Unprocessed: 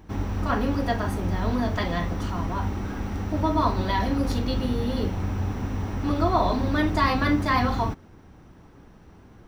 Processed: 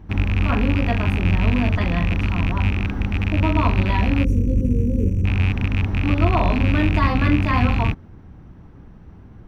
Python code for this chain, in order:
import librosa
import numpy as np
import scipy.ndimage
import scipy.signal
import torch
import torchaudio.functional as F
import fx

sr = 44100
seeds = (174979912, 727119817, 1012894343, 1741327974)

y = fx.rattle_buzz(x, sr, strikes_db=-27.0, level_db=-14.0)
y = fx.spec_box(y, sr, start_s=4.24, length_s=1.01, low_hz=580.0, high_hz=5600.0, gain_db=-26)
y = fx.bass_treble(y, sr, bass_db=9, treble_db=-10)